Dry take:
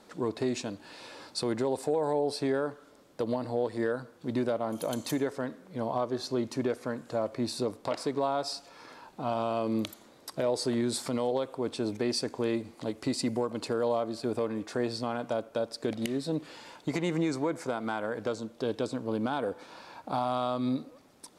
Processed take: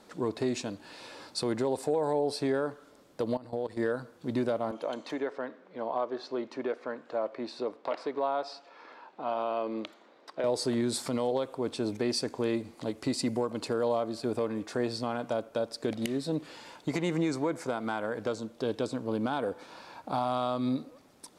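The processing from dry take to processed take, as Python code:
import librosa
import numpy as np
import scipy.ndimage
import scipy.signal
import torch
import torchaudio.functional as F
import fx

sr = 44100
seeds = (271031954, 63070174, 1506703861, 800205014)

y = fx.level_steps(x, sr, step_db=16, at=(3.37, 3.77))
y = fx.bandpass_edges(y, sr, low_hz=360.0, high_hz=3000.0, at=(4.71, 10.44))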